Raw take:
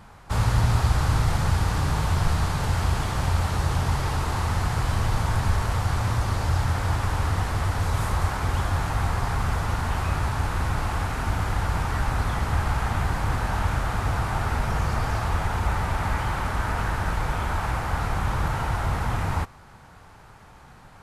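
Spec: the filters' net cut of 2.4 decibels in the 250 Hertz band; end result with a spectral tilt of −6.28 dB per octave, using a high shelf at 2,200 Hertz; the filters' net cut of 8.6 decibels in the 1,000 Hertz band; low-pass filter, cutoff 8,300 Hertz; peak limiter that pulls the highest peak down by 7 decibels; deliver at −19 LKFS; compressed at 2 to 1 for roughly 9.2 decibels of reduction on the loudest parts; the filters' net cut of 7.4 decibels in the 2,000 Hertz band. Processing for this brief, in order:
low-pass filter 8,300 Hz
parametric band 250 Hz −3.5 dB
parametric band 1,000 Hz −9 dB
parametric band 2,000 Hz −4 dB
high-shelf EQ 2,200 Hz −4 dB
downward compressor 2 to 1, threshold −34 dBFS
level +17 dB
brickwall limiter −9 dBFS

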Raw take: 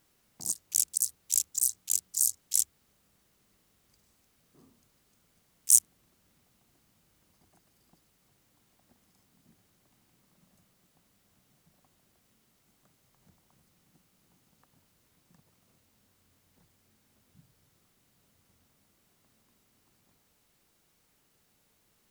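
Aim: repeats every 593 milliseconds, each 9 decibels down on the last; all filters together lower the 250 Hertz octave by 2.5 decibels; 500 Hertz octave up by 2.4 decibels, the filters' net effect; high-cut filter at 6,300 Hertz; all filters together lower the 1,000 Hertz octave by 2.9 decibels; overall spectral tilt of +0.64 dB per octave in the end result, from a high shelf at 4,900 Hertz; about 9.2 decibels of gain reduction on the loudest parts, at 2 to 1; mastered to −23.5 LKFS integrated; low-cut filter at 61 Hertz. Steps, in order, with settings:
high-pass filter 61 Hz
low-pass filter 6,300 Hz
parametric band 250 Hz −5 dB
parametric band 500 Hz +6.5 dB
parametric band 1,000 Hz −6.5 dB
high-shelf EQ 4,900 Hz +7.5 dB
downward compressor 2 to 1, threshold −32 dBFS
repeating echo 593 ms, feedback 35%, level −9 dB
level +11.5 dB

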